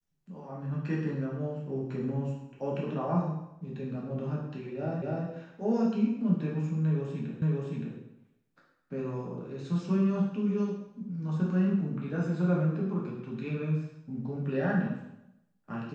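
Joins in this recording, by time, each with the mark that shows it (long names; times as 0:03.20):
0:05.02: the same again, the last 0.25 s
0:07.42: the same again, the last 0.57 s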